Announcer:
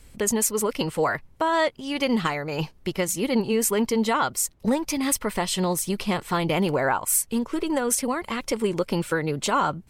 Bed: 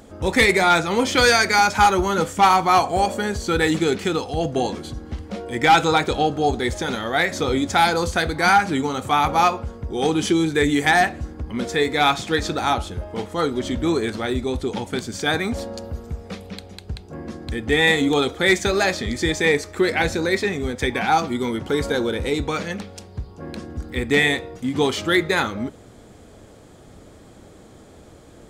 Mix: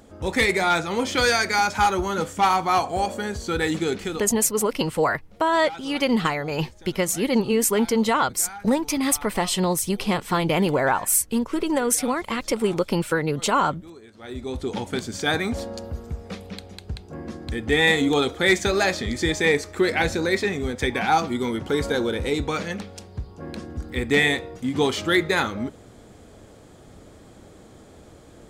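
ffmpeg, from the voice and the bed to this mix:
-filter_complex "[0:a]adelay=4000,volume=2dB[a];[1:a]volume=17.5dB,afade=t=out:st=3.98:d=0.43:silence=0.112202,afade=t=in:st=14.15:d=0.63:silence=0.0794328[b];[a][b]amix=inputs=2:normalize=0"

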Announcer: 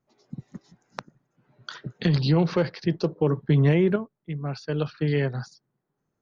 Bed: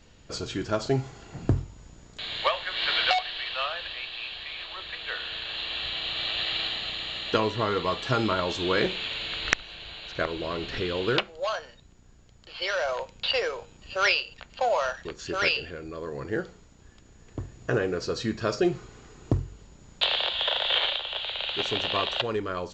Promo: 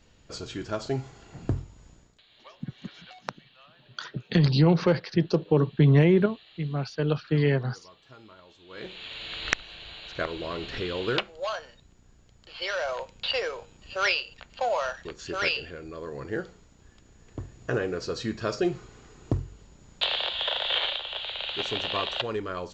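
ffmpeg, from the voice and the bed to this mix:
-filter_complex "[0:a]adelay=2300,volume=1dB[a];[1:a]volume=19.5dB,afade=t=out:st=1.91:d=0.31:silence=0.0841395,afade=t=in:st=8.68:d=0.82:silence=0.0668344[b];[a][b]amix=inputs=2:normalize=0"

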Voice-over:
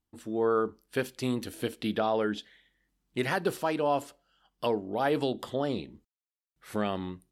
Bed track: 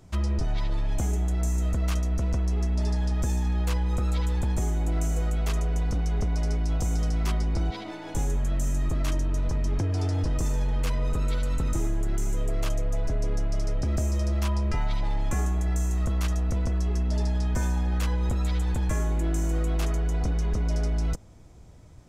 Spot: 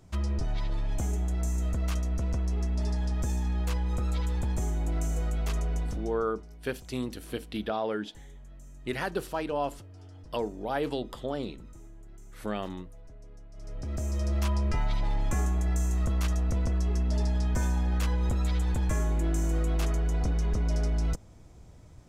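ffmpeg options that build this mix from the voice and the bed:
-filter_complex "[0:a]adelay=5700,volume=-3dB[a];[1:a]volume=17.5dB,afade=t=out:st=5.74:d=0.52:silence=0.112202,afade=t=in:st=13.53:d=0.88:silence=0.0891251[b];[a][b]amix=inputs=2:normalize=0"

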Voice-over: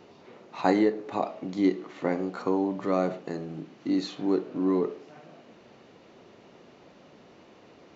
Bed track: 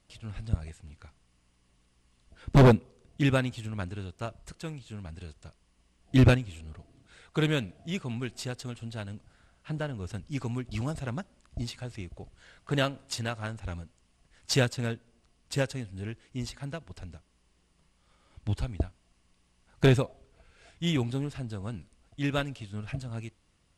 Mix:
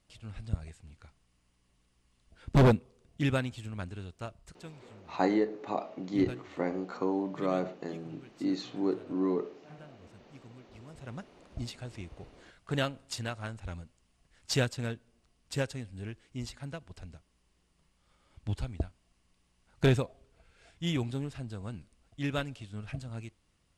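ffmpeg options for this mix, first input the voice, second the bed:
-filter_complex "[0:a]adelay=4550,volume=-4.5dB[a];[1:a]volume=12dB,afade=t=out:st=4.16:d=0.96:silence=0.16788,afade=t=in:st=10.87:d=0.51:silence=0.158489[b];[a][b]amix=inputs=2:normalize=0"

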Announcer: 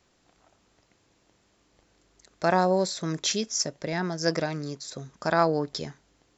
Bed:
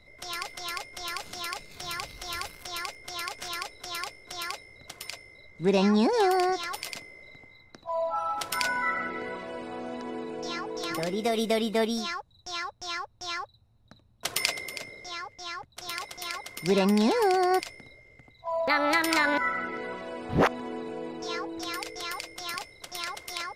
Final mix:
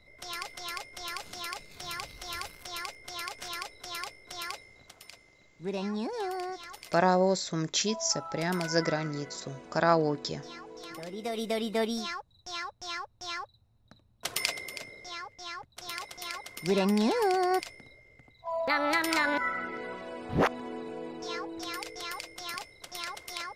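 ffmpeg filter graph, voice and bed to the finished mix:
-filter_complex "[0:a]adelay=4500,volume=-1.5dB[a];[1:a]volume=5dB,afade=t=out:st=4.62:d=0.34:silence=0.398107,afade=t=in:st=11.03:d=0.78:silence=0.398107[b];[a][b]amix=inputs=2:normalize=0"

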